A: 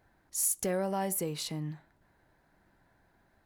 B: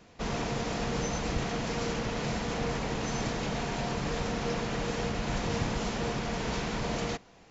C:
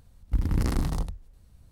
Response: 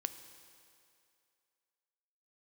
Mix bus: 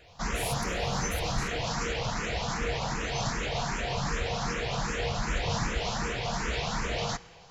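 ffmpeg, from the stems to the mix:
-filter_complex "[0:a]volume=-12.5dB,asplit=2[a][b];[b]volume=-9dB[c];[1:a]equalizer=f=280:t=o:w=1.4:g=-10.5,asplit=2[d][e];[e]afreqshift=2.6[f];[d][f]amix=inputs=2:normalize=1,volume=3dB,asplit=2[g][h];[h]volume=-4dB[i];[2:a]volume=-18dB[j];[3:a]atrim=start_sample=2205[k];[c][i]amix=inputs=2:normalize=0[l];[l][k]afir=irnorm=-1:irlink=0[m];[a][g][j][m]amix=inputs=4:normalize=0"

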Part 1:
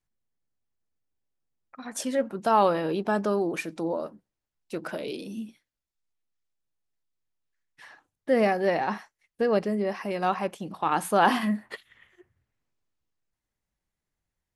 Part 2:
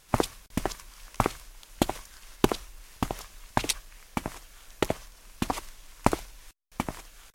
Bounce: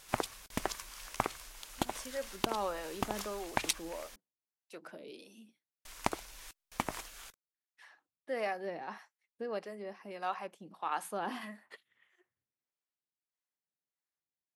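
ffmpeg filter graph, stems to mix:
-filter_complex "[0:a]highpass=130,acrossover=split=450[a][b];[a]aeval=exprs='val(0)*(1-0.7/2+0.7/2*cos(2*PI*1.6*n/s))':c=same[c];[b]aeval=exprs='val(0)*(1-0.7/2-0.7/2*cos(2*PI*1.6*n/s))':c=same[d];[c][d]amix=inputs=2:normalize=0,volume=-8dB[e];[1:a]acompressor=threshold=-29dB:ratio=6,volume=3dB,asplit=3[f][g][h];[f]atrim=end=4.16,asetpts=PTS-STARTPTS,afade=t=out:st=4.156:d=0.004:c=hsin[i];[g]atrim=start=4.16:end=5.85,asetpts=PTS-STARTPTS,volume=0[j];[h]atrim=start=5.85,asetpts=PTS-STARTPTS,afade=t=in:d=0.004:c=hsin[k];[i][j][k]concat=n=3:v=0:a=1[l];[e][l]amix=inputs=2:normalize=0,lowshelf=f=300:g=-9.5"

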